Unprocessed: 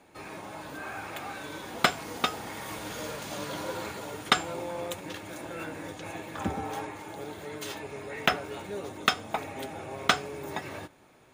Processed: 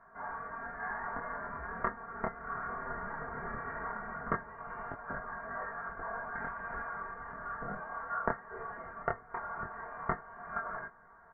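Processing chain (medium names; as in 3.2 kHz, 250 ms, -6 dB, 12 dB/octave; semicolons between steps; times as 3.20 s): elliptic high-pass 1.8 kHz, stop band 60 dB; comb 4.2 ms, depth 94%; compression 2.5:1, threshold -41 dBFS, peak gain reduction 15 dB; chorus 0.18 Hz, delay 20 ms, depth 6.5 ms; frequency inversion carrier 3.3 kHz; trim +10.5 dB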